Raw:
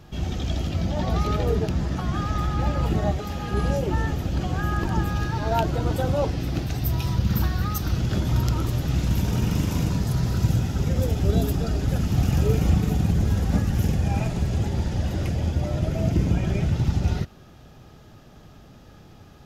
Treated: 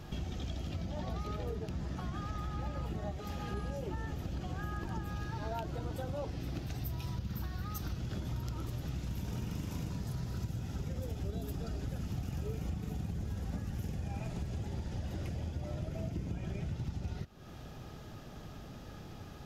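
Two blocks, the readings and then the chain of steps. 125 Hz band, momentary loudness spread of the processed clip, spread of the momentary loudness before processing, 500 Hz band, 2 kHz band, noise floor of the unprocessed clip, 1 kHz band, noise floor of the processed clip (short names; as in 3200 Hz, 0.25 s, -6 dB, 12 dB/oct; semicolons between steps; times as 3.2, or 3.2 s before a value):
-15.0 dB, 6 LU, 4 LU, -15.0 dB, -14.0 dB, -48 dBFS, -14.5 dB, -48 dBFS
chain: compressor 5:1, threshold -37 dBFS, peak gain reduction 20 dB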